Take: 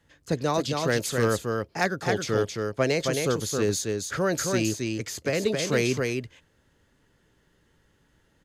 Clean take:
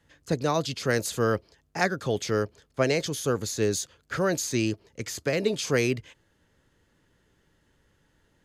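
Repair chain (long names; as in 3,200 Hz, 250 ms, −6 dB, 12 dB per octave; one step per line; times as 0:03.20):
clipped peaks rebuilt −14.5 dBFS
echo removal 268 ms −4 dB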